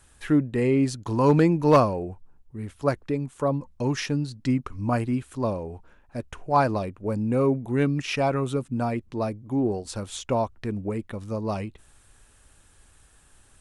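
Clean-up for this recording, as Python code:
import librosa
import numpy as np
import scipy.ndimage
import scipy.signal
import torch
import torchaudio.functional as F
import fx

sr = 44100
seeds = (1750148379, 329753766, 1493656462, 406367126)

y = fx.fix_declip(x, sr, threshold_db=-9.0)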